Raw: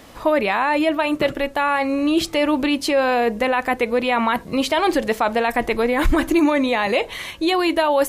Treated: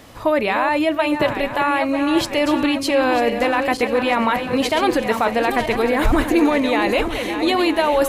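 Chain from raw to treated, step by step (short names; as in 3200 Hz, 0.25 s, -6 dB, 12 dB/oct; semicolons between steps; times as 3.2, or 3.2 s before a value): regenerating reverse delay 0.472 s, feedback 63%, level -8 dB; bell 110 Hz +9.5 dB 0.37 oct; thin delay 0.346 s, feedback 81%, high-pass 4700 Hz, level -22 dB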